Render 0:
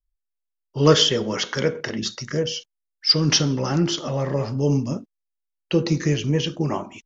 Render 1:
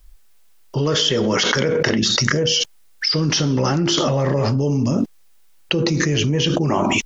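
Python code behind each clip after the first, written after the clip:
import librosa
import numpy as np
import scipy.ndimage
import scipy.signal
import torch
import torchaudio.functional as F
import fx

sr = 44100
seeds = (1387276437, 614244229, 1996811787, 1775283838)

y = fx.env_flatten(x, sr, amount_pct=100)
y = y * librosa.db_to_amplitude(-8.0)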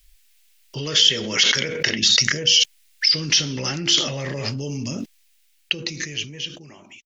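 y = fx.fade_out_tail(x, sr, length_s=2.26)
y = fx.high_shelf_res(y, sr, hz=1600.0, db=11.5, q=1.5)
y = y * librosa.db_to_amplitude(-9.5)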